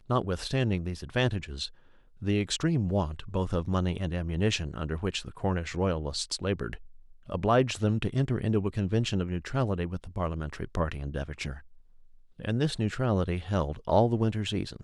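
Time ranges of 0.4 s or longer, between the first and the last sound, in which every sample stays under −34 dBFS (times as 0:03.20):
0:01.66–0:02.22
0:06.75–0:07.30
0:11.53–0:12.40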